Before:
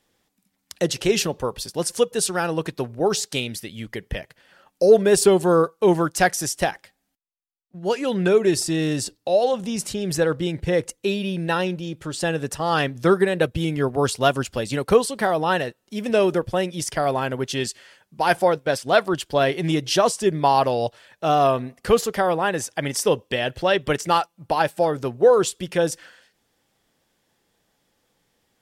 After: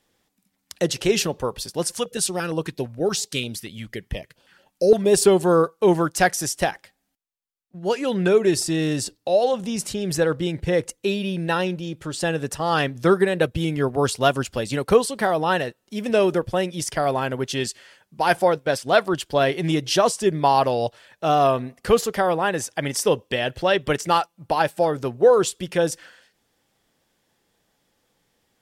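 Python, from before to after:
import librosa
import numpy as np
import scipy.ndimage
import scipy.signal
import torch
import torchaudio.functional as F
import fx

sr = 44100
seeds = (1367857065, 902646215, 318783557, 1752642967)

y = fx.filter_held_notch(x, sr, hz=8.7, low_hz=390.0, high_hz=1900.0, at=(1.94, 5.14))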